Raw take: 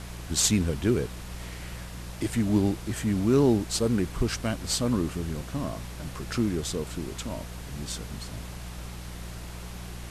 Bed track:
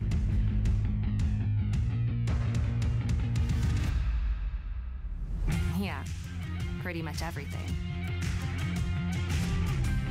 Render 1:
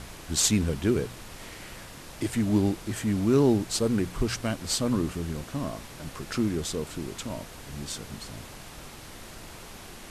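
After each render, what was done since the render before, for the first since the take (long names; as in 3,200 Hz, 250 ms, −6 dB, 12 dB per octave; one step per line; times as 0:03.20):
hum removal 60 Hz, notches 3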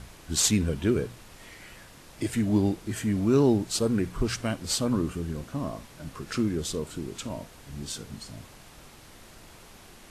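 noise reduction from a noise print 6 dB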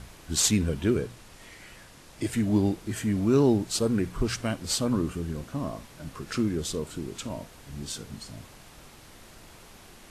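0:00.97–0:02.23: elliptic low-pass filter 12,000 Hz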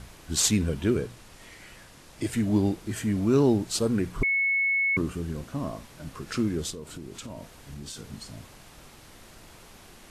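0:04.23–0:04.97: beep over 2,200 Hz −21.5 dBFS
0:06.70–0:08.13: downward compressor, threshold −35 dBFS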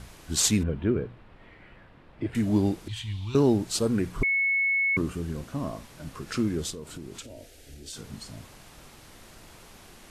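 0:00.63–0:02.35: high-frequency loss of the air 480 metres
0:02.88–0:03.35: drawn EQ curve 110 Hz 0 dB, 220 Hz −23 dB, 330 Hz −22 dB, 600 Hz −28 dB, 910 Hz −2 dB, 1,400 Hz −15 dB, 2,000 Hz −7 dB, 3,500 Hz +11 dB, 5,100 Hz −4 dB, 14,000 Hz −17 dB
0:07.22–0:07.93: phaser with its sweep stopped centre 430 Hz, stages 4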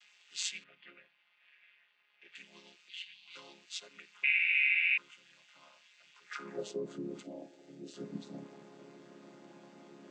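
channel vocoder with a chord as carrier major triad, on C#3
high-pass filter sweep 2,600 Hz → 300 Hz, 0:06.22–0:06.81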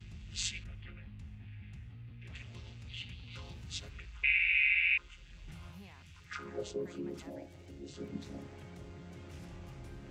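mix in bed track −20 dB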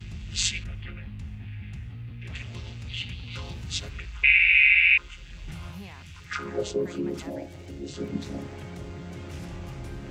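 level +10.5 dB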